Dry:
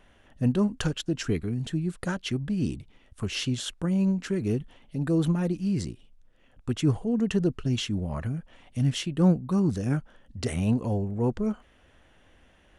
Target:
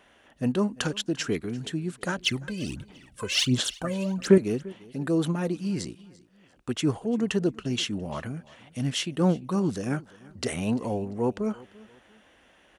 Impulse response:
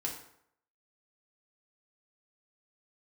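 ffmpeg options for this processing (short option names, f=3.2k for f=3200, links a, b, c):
-filter_complex "[0:a]highpass=f=46:w=0.5412,highpass=f=46:w=1.3066,equalizer=f=75:t=o:w=2.4:g=-14,asettb=1/sr,asplit=3[a][b][c];[a]atrim=end=2.184[d];[b]atrim=start=2.18:end=4.38,asetpts=PTS-STARTPTS,afade=t=in:d=0.004:c=qsin,afade=t=out:st=2.196:d=0.004:c=qsin,aphaser=in_gain=1:out_gain=1:delay=2:decay=0.77:speed=1.4:type=sinusoidal[e];[c]atrim=start=4.376[f];[d][e]acrossfade=d=0.004:c1=hsin:c2=qsin[g];[g][f]acrossfade=d=0.004:c1=qsin:c2=hsin,aecho=1:1:344|688:0.0794|0.0262,volume=3.5dB"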